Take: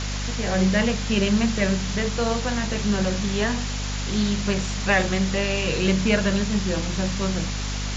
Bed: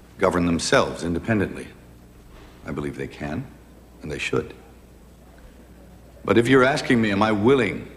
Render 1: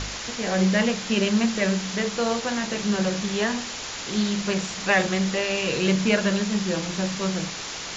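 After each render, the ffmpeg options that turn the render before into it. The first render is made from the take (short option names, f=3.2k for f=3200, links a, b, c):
-af "bandreject=f=50:t=h:w=4,bandreject=f=100:t=h:w=4,bandreject=f=150:t=h:w=4,bandreject=f=200:t=h:w=4,bandreject=f=250:t=h:w=4"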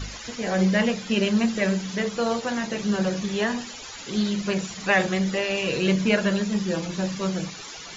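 -af "afftdn=nr=14:nf=-34"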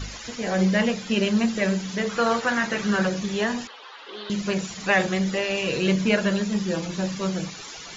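-filter_complex "[0:a]asettb=1/sr,asplit=3[a][b][c];[a]atrim=end=2.094[d];[b]atrim=start=2.09:end=3.07,asetpts=PTS-STARTPTS,afade=t=in:d=0.004:c=qsin,afade=t=out:st=0.976:d=0.004:c=qsin,equalizer=f=1.5k:t=o:w=1.3:g=10[e];[c]atrim=start=3.066[f];[d][e]acrossfade=d=0.004:c1=hsin:c2=qsin[g];[g][f]acrossfade=d=0.004:c1=qsin:c2=hsin,asettb=1/sr,asplit=3[h][i][j];[h]atrim=end=3.674[k];[i]atrim=start=3.67:end=4.3,asetpts=PTS-STARTPTS,afade=t=in:d=0.004:c=qsin,afade=t=out:st=0.626:d=0.004:c=qsin,highpass=f=430:w=0.5412,highpass=f=430:w=1.3066,equalizer=f=630:t=q:w=4:g=-4,equalizer=f=1.1k:t=q:w=4:g=5,equalizer=f=2.3k:t=q:w=4:g=-7,lowpass=f=3.5k:w=0.5412,lowpass=f=3.5k:w=1.3066[l];[j]atrim=start=4.296[m];[k][l]acrossfade=d=0.004:c1=hsin:c2=qsin[n];[n][m]acrossfade=d=0.004:c1=qsin:c2=hsin"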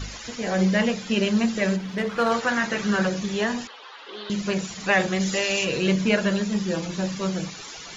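-filter_complex "[0:a]asettb=1/sr,asplit=3[a][b][c];[a]atrim=end=1.764[d];[b]atrim=start=1.76:end=2.32,asetpts=PTS-STARTPTS,afade=t=in:d=0.004:c=qsin,afade=t=out:st=0.556:d=0.004:c=qsin,adynamicsmooth=sensitivity=2.5:basefreq=3.1k[e];[c]atrim=start=2.316[f];[d][e]acrossfade=d=0.004:c1=hsin:c2=qsin[g];[g][f]acrossfade=d=0.004:c1=qsin:c2=hsin,asplit=3[h][i][j];[h]afade=t=out:st=5.19:d=0.02[k];[i]aemphasis=mode=production:type=75fm,afade=t=in:st=5.19:d=0.02,afade=t=out:st=5.64:d=0.02[l];[j]afade=t=in:st=5.64:d=0.02[m];[k][l][m]amix=inputs=3:normalize=0"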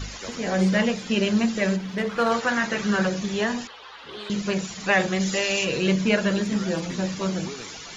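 -filter_complex "[1:a]volume=-21dB[a];[0:a][a]amix=inputs=2:normalize=0"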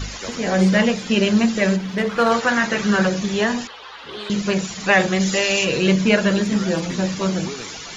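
-af "volume=5dB"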